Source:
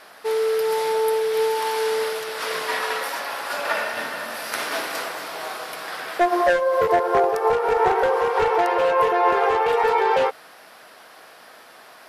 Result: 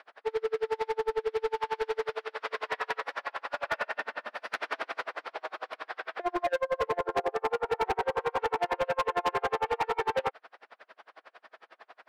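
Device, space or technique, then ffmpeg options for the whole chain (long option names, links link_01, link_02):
helicopter radio: -af "highpass=380,lowpass=2700,aeval=exprs='val(0)*pow(10,-37*(0.5-0.5*cos(2*PI*11*n/s))/20)':channel_layout=same,asoftclip=type=hard:threshold=-23dB"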